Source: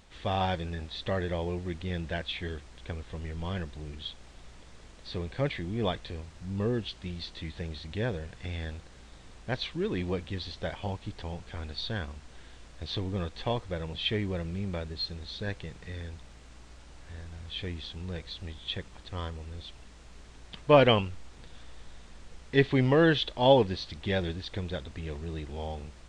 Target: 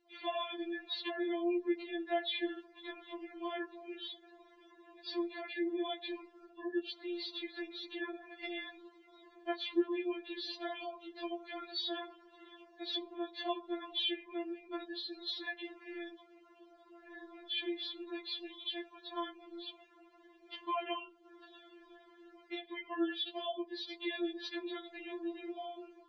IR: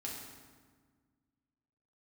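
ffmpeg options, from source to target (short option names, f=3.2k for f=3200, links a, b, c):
-filter_complex "[0:a]asplit=2[a][b];[1:a]atrim=start_sample=2205,afade=t=out:st=0.38:d=0.01,atrim=end_sample=17199,atrim=end_sample=6174[c];[b][c]afir=irnorm=-1:irlink=0,volume=-16dB[d];[a][d]amix=inputs=2:normalize=0,acompressor=threshold=-33dB:ratio=12,afftdn=nr=22:nf=-54,highpass=160,lowpass=4.5k,afftfilt=real='re*4*eq(mod(b,16),0)':imag='im*4*eq(mod(b,16),0)':win_size=2048:overlap=0.75,volume=4.5dB"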